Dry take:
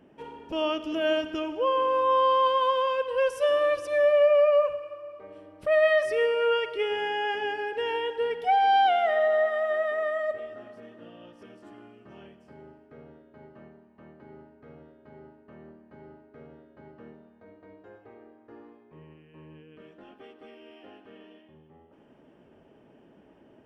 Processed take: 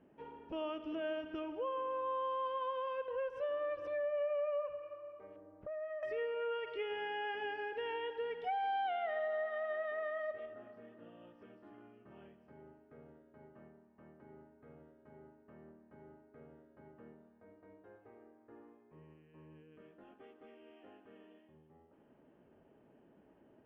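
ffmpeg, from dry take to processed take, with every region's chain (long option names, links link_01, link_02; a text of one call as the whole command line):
ffmpeg -i in.wav -filter_complex "[0:a]asettb=1/sr,asplit=3[link_01][link_02][link_03];[link_01]atrim=end=3.084[link_04];[link_02]atrim=start=3.08:end=4.18,asetpts=PTS-STARTPTS,afade=type=in:duration=0.004:curve=qsin,afade=type=out:start_time=1.096:duration=0.004:curve=qsin,highshelf=frequency=3600:gain=-8.5,acompressor=mode=upward:threshold=-26dB:ratio=2.5:attack=3.2:release=140:knee=2.83:detection=peak[link_05];[link_03]atrim=start=4.176[link_06];[link_04][link_05]acrossfade=duration=0.004:curve1=hsin:curve2=qsin[link_07];[link_07][link_06]acrossfade=duration=0.004:curve1=qsin:curve2=hsin,asettb=1/sr,asplit=3[link_08][link_09][link_10];[link_08]atrim=end=5.364[link_11];[link_09]atrim=start=5.36:end=6.03,asetpts=PTS-STARTPTS,afade=type=in:duration=0.004:curve=qsin,afade=type=out:start_time=0.666:duration=0.004:curve=qsin,lowpass=1300,acompressor=threshold=-33dB:ratio=5:attack=3.2:release=140:knee=1:detection=peak[link_12];[link_10]atrim=start=6.026[link_13];[link_11][link_12]acrossfade=duration=0.004:curve1=hsin:curve2=qsin[link_14];[link_14][link_13]acrossfade=duration=0.004:curve1=qsin:curve2=hsin,asettb=1/sr,asplit=3[link_15][link_16][link_17];[link_15]atrim=end=6.674[link_18];[link_16]atrim=start=6.67:end=10.46,asetpts=PTS-STARTPTS,afade=type=in:duration=0.004:curve=qsin,afade=type=out:start_time=3.786:duration=0.004:curve=qsin,highshelf=frequency=3300:gain=11.5,acrossover=split=3700[link_19][link_20];[link_20]acompressor=threshold=-46dB:ratio=4:attack=1:release=60[link_21];[link_19][link_21]amix=inputs=2:normalize=0[link_22];[link_17]atrim=start=10.456[link_23];[link_18][link_22]acrossfade=duration=0.004:curve1=hsin:curve2=qsin[link_24];[link_24][link_23]acrossfade=duration=0.004:curve1=qsin:curve2=hsin,lowpass=2400,acompressor=threshold=-29dB:ratio=2.5,volume=-8.5dB" out.wav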